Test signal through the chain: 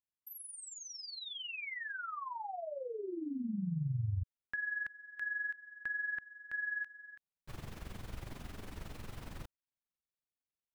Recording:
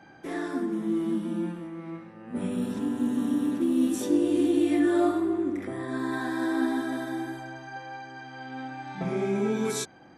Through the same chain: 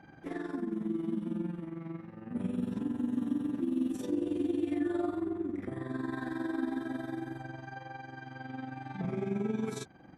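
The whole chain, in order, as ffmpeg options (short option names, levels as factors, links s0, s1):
-af "acompressor=threshold=0.0126:ratio=1.5,bass=f=250:g=8,treble=f=4000:g=-7,tremolo=f=22:d=0.667,volume=0.841"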